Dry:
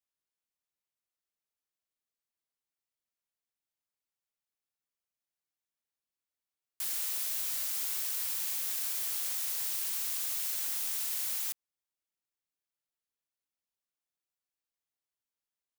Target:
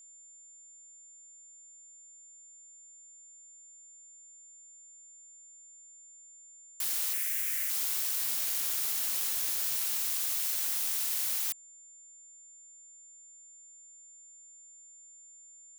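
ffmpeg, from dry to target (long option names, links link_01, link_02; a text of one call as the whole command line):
ffmpeg -i in.wav -filter_complex "[0:a]asettb=1/sr,asplit=3[link_01][link_02][link_03];[link_01]atrim=end=7.134[link_04];[link_02]atrim=start=7.13:end=7.7,asetpts=PTS-STARTPTS,afade=type=in:duration=0.004:curve=qsin,afade=type=out:start_time=0.566:duration=0.004:curve=qsin,equalizer=frequency=125:width_type=o:width=1:gain=-7,equalizer=frequency=250:width_type=o:width=1:gain=-12,equalizer=frequency=1000:width_type=o:width=1:gain=-12,equalizer=frequency=2000:width_type=o:width=1:gain=12,equalizer=frequency=4000:width_type=o:width=1:gain=-11[link_05];[link_03]atrim=start=7.696[link_06];[link_04][link_05]acrossfade=duration=0.004:curve1=hsin:curve2=qsin[link_07];[link_07][link_06]acrossfade=duration=0.004:curve1=qsin:curve2=hsin,aeval=exprs='val(0)+0.002*sin(2*PI*7200*n/s)':channel_layout=same,asettb=1/sr,asplit=3[link_08][link_09][link_10];[link_08]atrim=end=8.224[link_11];[link_09]atrim=start=8.22:end=9.98,asetpts=PTS-STARTPTS,afade=type=in:duration=0.004:curve=qsin,afade=type=out:start_time=1.756:duration=0.004:curve=qsin,afreqshift=-260[link_12];[link_10]atrim=start=9.976[link_13];[link_11][link_12]acrossfade=duration=0.004:curve1=hsin:curve2=qsin[link_14];[link_14][link_13]acrossfade=duration=0.004:curve1=qsin:curve2=hsin,volume=2.5dB" out.wav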